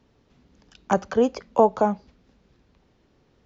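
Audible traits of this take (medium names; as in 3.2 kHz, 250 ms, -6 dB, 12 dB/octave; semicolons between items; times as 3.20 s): noise floor -64 dBFS; spectral tilt -3.0 dB/octave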